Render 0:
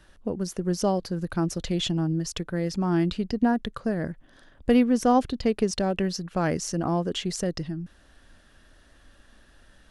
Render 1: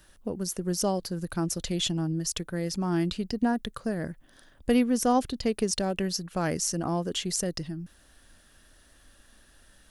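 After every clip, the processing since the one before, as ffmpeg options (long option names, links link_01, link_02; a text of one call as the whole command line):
ffmpeg -i in.wav -af "aemphasis=mode=production:type=50fm,volume=-3dB" out.wav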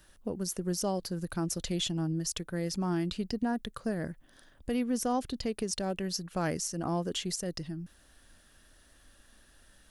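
ffmpeg -i in.wav -af "alimiter=limit=-19.5dB:level=0:latency=1:release=177,volume=-2.5dB" out.wav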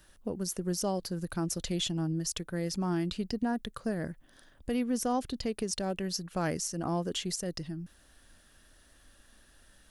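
ffmpeg -i in.wav -af anull out.wav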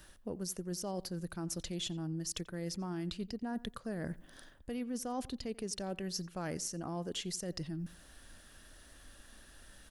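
ffmpeg -i in.wav -filter_complex "[0:a]areverse,acompressor=threshold=-40dB:ratio=6,areverse,asplit=2[link_01][link_02];[link_02]adelay=88,lowpass=frequency=3300:poles=1,volume=-20dB,asplit=2[link_03][link_04];[link_04]adelay=88,lowpass=frequency=3300:poles=1,volume=0.26[link_05];[link_01][link_03][link_05]amix=inputs=3:normalize=0,volume=3.5dB" out.wav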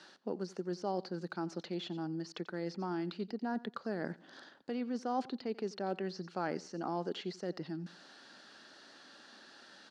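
ffmpeg -i in.wav -filter_complex "[0:a]highpass=frequency=190:width=0.5412,highpass=frequency=190:width=1.3066,equalizer=frequency=380:width_type=q:width=4:gain=4,equalizer=frequency=830:width_type=q:width=4:gain=7,equalizer=frequency=1400:width_type=q:width=4:gain=5,equalizer=frequency=4400:width_type=q:width=4:gain=10,lowpass=frequency=6200:width=0.5412,lowpass=frequency=6200:width=1.3066,acrossover=split=2600[link_01][link_02];[link_02]acompressor=threshold=-56dB:ratio=4:attack=1:release=60[link_03];[link_01][link_03]amix=inputs=2:normalize=0,volume=1.5dB" out.wav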